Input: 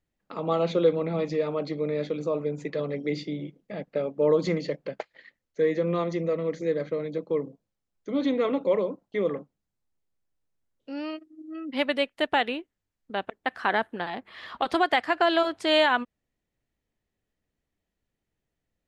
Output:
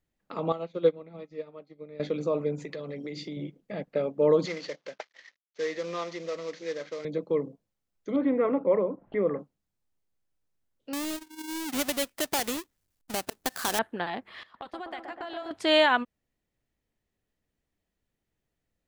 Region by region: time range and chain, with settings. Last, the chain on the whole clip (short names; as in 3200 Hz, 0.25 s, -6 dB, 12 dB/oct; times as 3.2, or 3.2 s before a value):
0.52–2 de-hum 259.2 Hz, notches 20 + upward expander 2.5:1, over -37 dBFS
2.62–3.37 high shelf 4100 Hz +7 dB + compressor 5:1, threshold -34 dBFS
4.46–7.05 CVSD 32 kbps + HPF 1000 Hz 6 dB/oct
8.16–9.39 LPF 2000 Hz 24 dB/oct + upward compressor, threshold -30 dBFS
10.93–13.79 half-waves squared off + high shelf 4000 Hz +10 dB + compressor 2:1, threshold -32 dBFS
14.43–15.51 gate -38 dBFS, range -19 dB + compressor 2.5:1, threshold -44 dBFS + dark delay 0.125 s, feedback 67%, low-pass 1400 Hz, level -4 dB
whole clip: dry